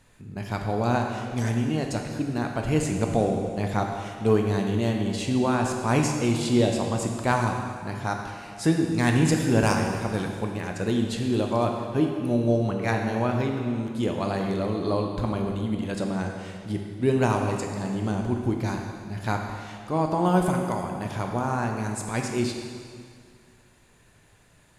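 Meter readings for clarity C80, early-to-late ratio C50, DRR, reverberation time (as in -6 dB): 5.0 dB, 3.5 dB, 2.0 dB, 2.1 s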